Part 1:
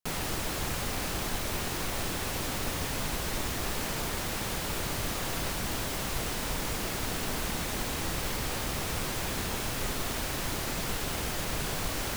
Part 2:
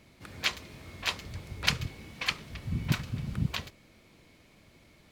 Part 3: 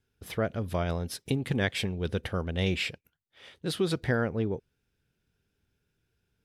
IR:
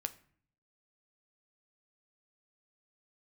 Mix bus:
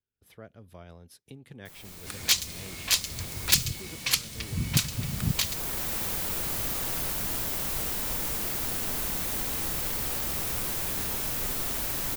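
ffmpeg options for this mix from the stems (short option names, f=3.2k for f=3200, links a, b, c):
-filter_complex "[0:a]highshelf=f=10k:g=6.5,adelay=1600,volume=-3dB[a];[1:a]equalizer=f=8.3k:w=0.39:g=14,adelay=1850,volume=2dB[b];[2:a]volume=-18dB,asplit=2[c][d];[d]apad=whole_len=607152[e];[a][e]sidechaincompress=threshold=-58dB:ratio=10:attack=7.3:release=1120[f];[f][b][c]amix=inputs=3:normalize=0,acrossover=split=220|3000[g][h][i];[h]acompressor=threshold=-34dB:ratio=6[j];[g][j][i]amix=inputs=3:normalize=0,aeval=exprs='0.224*(abs(mod(val(0)/0.224+3,4)-2)-1)':c=same,highshelf=f=10k:g=8.5"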